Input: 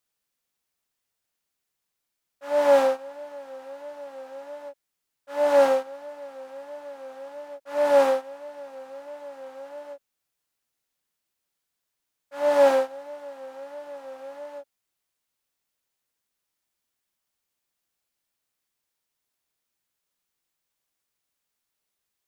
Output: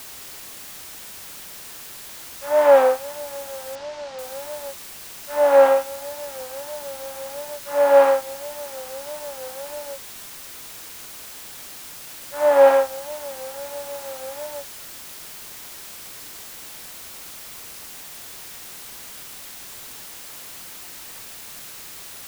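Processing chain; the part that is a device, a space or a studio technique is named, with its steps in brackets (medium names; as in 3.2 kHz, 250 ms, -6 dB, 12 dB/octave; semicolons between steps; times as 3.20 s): wax cylinder (band-pass 400–2500 Hz; wow and flutter; white noise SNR 14 dB); 3.75–4.19 s: low-pass 5.7 kHz 24 dB/octave; trim +6 dB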